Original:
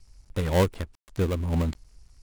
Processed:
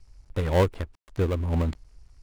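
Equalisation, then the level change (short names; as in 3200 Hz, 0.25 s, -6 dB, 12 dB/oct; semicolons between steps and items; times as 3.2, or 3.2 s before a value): bell 190 Hz -5 dB 0.58 oct; high shelf 4100 Hz -9.5 dB; +1.5 dB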